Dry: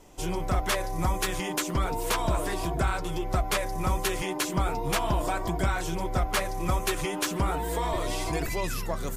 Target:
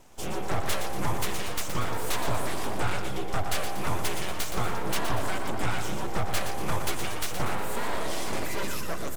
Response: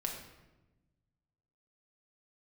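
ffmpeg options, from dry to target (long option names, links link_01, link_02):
-af "aeval=exprs='abs(val(0))':channel_layout=same,aecho=1:1:119|238|357|476|595:0.422|0.198|0.0932|0.0438|0.0206"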